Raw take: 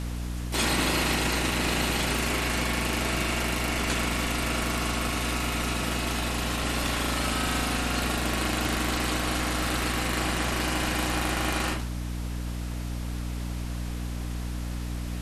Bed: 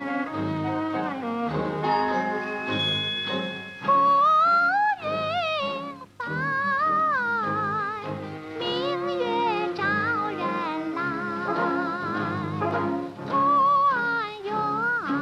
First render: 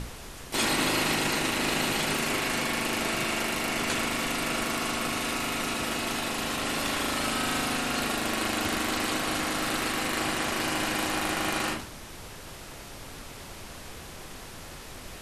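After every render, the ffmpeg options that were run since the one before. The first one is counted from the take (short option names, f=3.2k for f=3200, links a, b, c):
-af "bandreject=f=60:t=h:w=6,bandreject=f=120:t=h:w=6,bandreject=f=180:t=h:w=6,bandreject=f=240:t=h:w=6,bandreject=f=300:t=h:w=6"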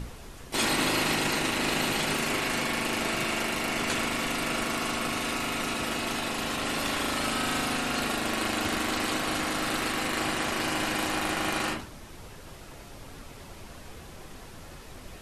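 -af "afftdn=nr=6:nf=-43"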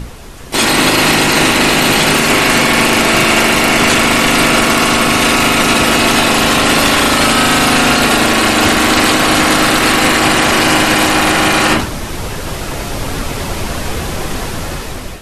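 -af "dynaudnorm=f=360:g=5:m=14dB,alimiter=level_in=11.5dB:limit=-1dB:release=50:level=0:latency=1"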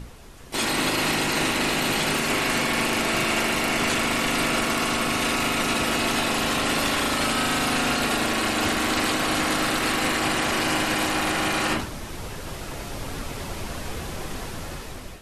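-af "volume=-13dB"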